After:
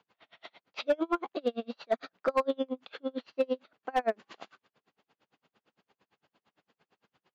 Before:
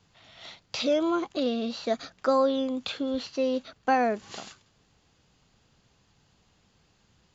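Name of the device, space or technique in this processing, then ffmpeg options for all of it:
helicopter radio: -af "highpass=310,lowpass=2600,aeval=exprs='val(0)*pow(10,-37*(0.5-0.5*cos(2*PI*8.8*n/s))/20)':channel_layout=same,asoftclip=type=hard:threshold=-23dB,volume=4dB"

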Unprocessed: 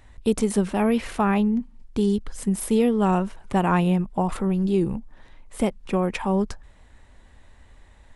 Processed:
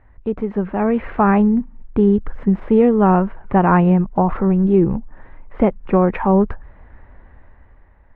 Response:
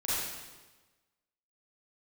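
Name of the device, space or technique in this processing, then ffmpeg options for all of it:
action camera in a waterproof case: -af "lowpass=frequency=1900:width=0.5412,lowpass=frequency=1900:width=1.3066,equalizer=frequency=230:width=3.8:gain=-2,dynaudnorm=framelen=210:gausssize=9:maxgain=10dB" -ar 48000 -c:a aac -b:a 64k

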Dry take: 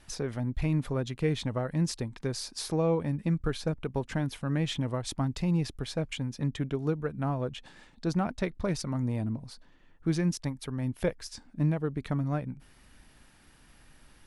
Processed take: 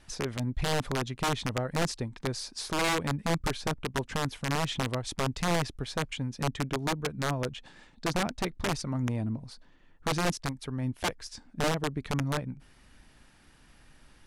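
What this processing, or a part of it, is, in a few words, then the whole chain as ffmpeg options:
overflowing digital effects unit: -af "aeval=exprs='(mod(11.9*val(0)+1,2)-1)/11.9':channel_layout=same,lowpass=9900"

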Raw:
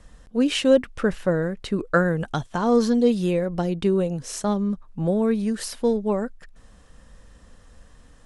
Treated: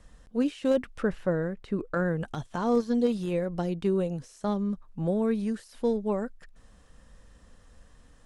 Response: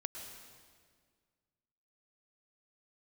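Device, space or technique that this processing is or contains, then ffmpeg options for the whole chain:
de-esser from a sidechain: -filter_complex "[0:a]asplit=2[link_01][link_02];[link_02]highpass=7000,apad=whole_len=363924[link_03];[link_01][link_03]sidechaincompress=threshold=-48dB:ratio=16:attack=1.3:release=30,asettb=1/sr,asplit=3[link_04][link_05][link_06];[link_04]atrim=end=1.024[link_07];[link_05]atrim=start=1.02:end=2.23,asetpts=PTS-STARTPTS,afade=type=in:duration=0.004:curve=qsin,afade=type=out:start_time=1.206:duration=0.004:curve=qsin,highshelf=frequency=3900:gain=-8.5[link_08];[link_06]atrim=start=2.226[link_09];[link_07][link_08]acrossfade=duration=0.004:curve1=hsin:curve2=qsin[link_10];[link_10][link_09]acrossfade=duration=0.004:curve1=qsin:curve2=hsin,volume=-5dB"

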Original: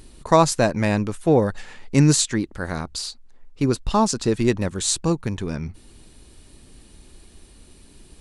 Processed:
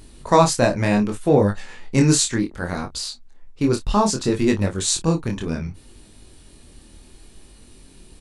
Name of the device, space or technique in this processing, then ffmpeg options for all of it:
double-tracked vocal: -filter_complex "[0:a]asplit=2[link_01][link_02];[link_02]adelay=29,volume=-11dB[link_03];[link_01][link_03]amix=inputs=2:normalize=0,flanger=delay=20:depth=5.7:speed=0.66,volume=4dB"

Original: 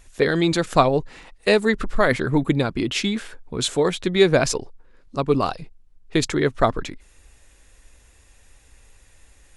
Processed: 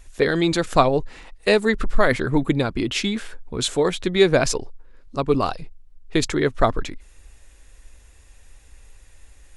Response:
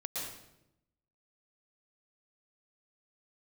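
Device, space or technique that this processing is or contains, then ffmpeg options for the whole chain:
low shelf boost with a cut just above: -af "lowshelf=frequency=80:gain=6.5,equalizer=frequency=150:width_type=o:width=0.98:gain=-3"

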